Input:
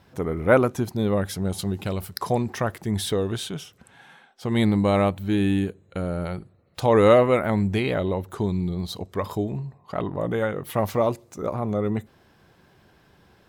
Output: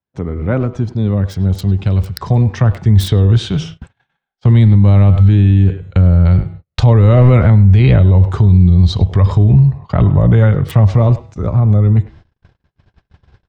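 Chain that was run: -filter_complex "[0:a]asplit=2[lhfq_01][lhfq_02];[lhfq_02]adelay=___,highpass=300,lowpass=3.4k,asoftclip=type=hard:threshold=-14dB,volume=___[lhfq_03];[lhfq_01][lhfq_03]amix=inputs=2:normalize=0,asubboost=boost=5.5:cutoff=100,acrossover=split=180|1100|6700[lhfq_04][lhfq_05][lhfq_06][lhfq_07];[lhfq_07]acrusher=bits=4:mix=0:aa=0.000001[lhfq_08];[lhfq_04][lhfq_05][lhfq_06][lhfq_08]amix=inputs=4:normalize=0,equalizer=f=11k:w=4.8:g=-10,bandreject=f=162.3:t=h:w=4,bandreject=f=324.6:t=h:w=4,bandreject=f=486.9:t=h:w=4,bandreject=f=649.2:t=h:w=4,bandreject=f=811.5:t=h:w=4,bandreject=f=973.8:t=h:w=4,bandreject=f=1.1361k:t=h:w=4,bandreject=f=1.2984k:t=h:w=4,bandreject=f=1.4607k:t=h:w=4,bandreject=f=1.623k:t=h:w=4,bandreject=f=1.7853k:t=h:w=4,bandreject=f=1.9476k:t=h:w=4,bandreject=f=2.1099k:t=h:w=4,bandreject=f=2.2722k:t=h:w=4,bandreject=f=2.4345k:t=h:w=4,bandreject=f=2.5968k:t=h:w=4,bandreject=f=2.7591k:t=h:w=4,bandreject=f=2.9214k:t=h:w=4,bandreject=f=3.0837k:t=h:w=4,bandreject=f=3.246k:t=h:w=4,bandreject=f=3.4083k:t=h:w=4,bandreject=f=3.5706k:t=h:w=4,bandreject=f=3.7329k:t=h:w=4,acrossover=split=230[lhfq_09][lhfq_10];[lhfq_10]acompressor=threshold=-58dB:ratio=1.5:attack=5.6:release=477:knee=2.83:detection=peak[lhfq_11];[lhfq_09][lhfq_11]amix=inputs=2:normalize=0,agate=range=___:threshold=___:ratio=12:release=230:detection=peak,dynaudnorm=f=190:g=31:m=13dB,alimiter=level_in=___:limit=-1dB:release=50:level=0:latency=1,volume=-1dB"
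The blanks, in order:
100, -15dB, -43dB, -48dB, 12.5dB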